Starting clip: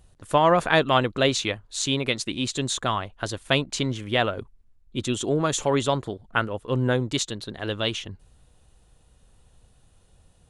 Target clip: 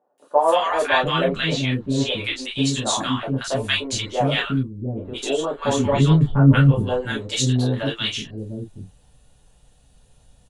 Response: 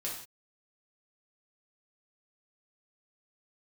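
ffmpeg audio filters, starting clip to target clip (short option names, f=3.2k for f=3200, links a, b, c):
-filter_complex "[0:a]asplit=3[a][b][c];[a]afade=t=out:st=5.14:d=0.02[d];[b]bass=f=250:g=14,treble=f=4k:g=-9,afade=t=in:st=5.14:d=0.02,afade=t=out:st=6.28:d=0.02[e];[c]afade=t=in:st=6.28:d=0.02[f];[d][e][f]amix=inputs=3:normalize=0,acrossover=split=360|1100[g][h][i];[i]adelay=180[j];[g]adelay=700[k];[k][h][j]amix=inputs=3:normalize=0[l];[1:a]atrim=start_sample=2205,atrim=end_sample=3528,asetrate=66150,aresample=44100[m];[l][m]afir=irnorm=-1:irlink=0,asettb=1/sr,asplit=3[n][o][p];[n]atrim=end=0.874[q];[o]atrim=start=0.87:end=2.45,asetpts=PTS-STARTPTS,afade=t=in:d=0.004:c=qsin,afade=t=out:st=1.576:d=0.004:c=qsin,acrossover=split=3900[r][s];[s]acompressor=threshold=-46dB:ratio=4:attack=1:release=60[t];[r][t]amix=inputs=2:normalize=0[u];[p]atrim=start=2.446[v];[q][u]acrossfade=d=0.004:c1=hsin:c2=qsin[w];[w][v]acrossfade=d=0.004:c1=qsin:c2=hsin,volume=6.5dB"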